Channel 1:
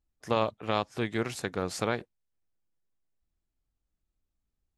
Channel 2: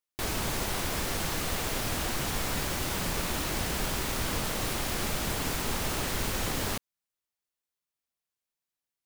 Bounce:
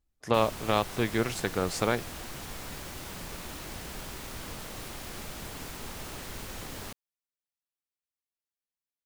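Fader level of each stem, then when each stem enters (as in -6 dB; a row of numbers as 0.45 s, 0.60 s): +2.5 dB, -9.5 dB; 0.00 s, 0.15 s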